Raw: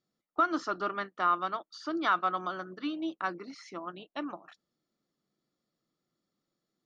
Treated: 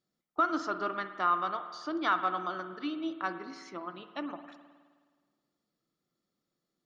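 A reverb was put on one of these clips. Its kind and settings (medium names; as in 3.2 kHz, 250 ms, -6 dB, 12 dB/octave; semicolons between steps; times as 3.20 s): spring tank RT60 1.6 s, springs 52 ms, chirp 75 ms, DRR 9.5 dB; trim -1 dB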